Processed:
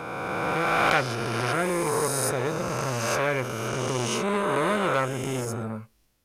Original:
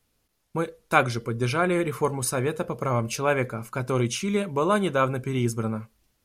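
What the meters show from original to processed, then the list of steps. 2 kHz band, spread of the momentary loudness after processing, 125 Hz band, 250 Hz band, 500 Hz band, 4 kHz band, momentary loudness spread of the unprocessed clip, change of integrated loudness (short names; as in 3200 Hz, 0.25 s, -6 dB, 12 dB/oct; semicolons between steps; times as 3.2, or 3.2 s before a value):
+2.5 dB, 7 LU, -3.0 dB, -3.0 dB, -0.5 dB, +3.0 dB, 8 LU, 0.0 dB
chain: spectral swells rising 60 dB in 2.63 s; core saturation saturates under 2700 Hz; gain -3 dB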